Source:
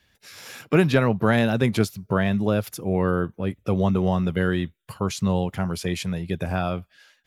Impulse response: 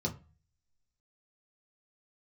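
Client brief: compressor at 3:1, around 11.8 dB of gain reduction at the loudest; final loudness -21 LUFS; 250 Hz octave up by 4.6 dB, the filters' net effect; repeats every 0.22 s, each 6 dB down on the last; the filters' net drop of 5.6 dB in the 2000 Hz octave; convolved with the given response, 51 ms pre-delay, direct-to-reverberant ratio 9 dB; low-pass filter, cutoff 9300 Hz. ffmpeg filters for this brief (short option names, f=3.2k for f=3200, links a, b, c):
-filter_complex "[0:a]lowpass=9.3k,equalizer=f=250:t=o:g=6.5,equalizer=f=2k:t=o:g=-8,acompressor=threshold=-27dB:ratio=3,aecho=1:1:220|440|660|880|1100|1320:0.501|0.251|0.125|0.0626|0.0313|0.0157,asplit=2[a][b];[1:a]atrim=start_sample=2205,adelay=51[c];[b][c]afir=irnorm=-1:irlink=0,volume=-12.5dB[d];[a][d]amix=inputs=2:normalize=0,volume=5.5dB"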